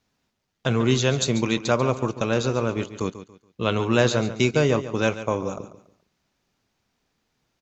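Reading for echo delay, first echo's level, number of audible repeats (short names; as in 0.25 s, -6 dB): 0.141 s, -13.0 dB, 3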